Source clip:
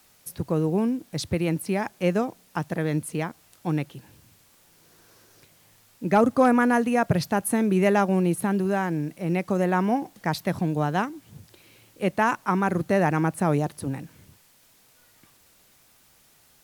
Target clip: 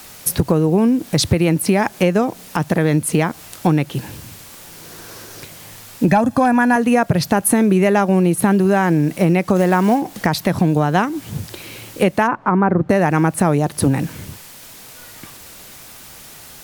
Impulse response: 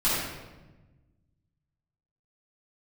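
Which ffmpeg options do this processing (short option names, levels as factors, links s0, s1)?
-filter_complex "[0:a]asettb=1/sr,asplit=3[s0][s1][s2];[s0]atrim=end=6.084[s3];[s1]atrim=start=6.08:end=6.76,asetpts=PTS-STARTPTS,afade=t=in:d=0.004:c=qsin,afade=t=out:st=0.676:d=0.004:c=qsin,aecho=1:1:1.2:0.64,atrim=end_sample=29988[s4];[s2]atrim=start=6.756[s5];[s3][s4]acrossfade=d=0.004:c1=hsin:c2=qsin[s6];[s6][s5]acrossfade=d=0.004:c1=qsin:c2=hsin,asplit=3[s7][s8][s9];[s7]afade=t=out:st=12.26:d=0.02[s10];[s8]lowpass=1300,afade=t=in:st=12.26:d=0.02,afade=t=out:st=12.89:d=0.02[s11];[s9]afade=t=in:st=12.89:d=0.02[s12];[s10][s11][s12]amix=inputs=3:normalize=0,acompressor=threshold=0.0316:ratio=16,asettb=1/sr,asplit=3[s13][s14][s15];[s13]atrim=end=9.564[s16];[s14]atrim=start=9.56:end=10.02,asetpts=PTS-STARTPTS,afade=t=in:d=0.004:c=qsin,afade=t=out:st=0.456:d=0.004:c=qsin,acrusher=bits=6:mode=log:mix=0:aa=0.000001[s17];[s15]atrim=start=10.016[s18];[s16][s17]acrossfade=d=0.004:c1=hsin:c2=qsin[s19];[s19][s18]acrossfade=d=0.004:c1=qsin:c2=hsin,alimiter=level_in=13.3:limit=0.891:release=50:level=0:latency=1,volume=0.708"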